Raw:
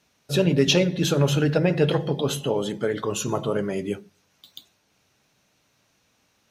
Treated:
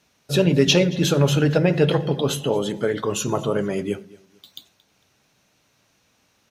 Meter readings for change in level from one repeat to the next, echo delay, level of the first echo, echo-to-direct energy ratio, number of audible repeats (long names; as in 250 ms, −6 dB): −10.0 dB, 226 ms, −22.0 dB, −21.5 dB, 2